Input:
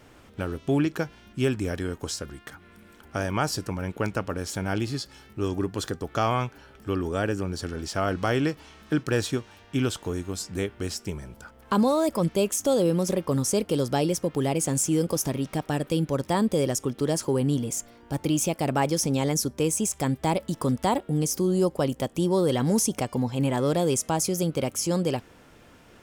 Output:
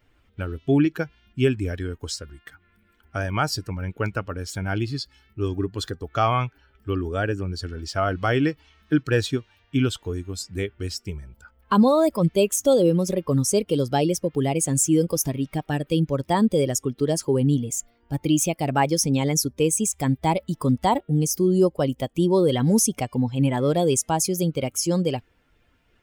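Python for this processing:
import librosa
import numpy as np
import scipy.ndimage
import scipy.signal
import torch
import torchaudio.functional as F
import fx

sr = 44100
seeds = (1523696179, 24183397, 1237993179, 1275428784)

y = fx.bin_expand(x, sr, power=1.5)
y = F.gain(torch.from_numpy(y), 6.5).numpy()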